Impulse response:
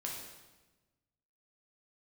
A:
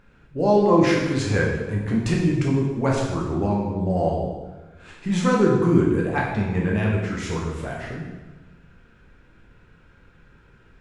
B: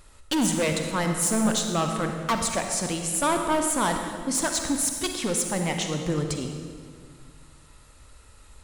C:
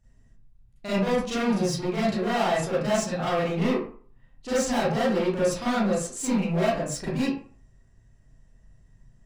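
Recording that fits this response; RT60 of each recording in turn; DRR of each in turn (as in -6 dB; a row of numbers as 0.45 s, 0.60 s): A; 1.2 s, 2.0 s, 0.45 s; -2.5 dB, 4.0 dB, -10.0 dB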